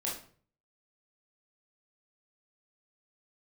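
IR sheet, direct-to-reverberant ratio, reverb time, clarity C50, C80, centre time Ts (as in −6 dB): −5.0 dB, 0.45 s, 5.5 dB, 11.0 dB, 35 ms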